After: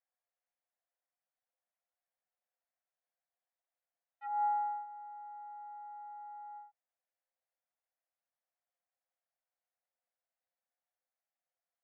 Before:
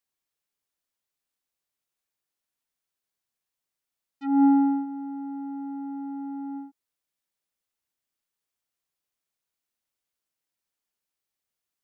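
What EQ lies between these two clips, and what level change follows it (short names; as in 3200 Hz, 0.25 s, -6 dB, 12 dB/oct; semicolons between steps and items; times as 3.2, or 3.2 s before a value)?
rippled Chebyshev high-pass 500 Hz, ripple 9 dB; LPF 1000 Hz 12 dB/oct; +6.5 dB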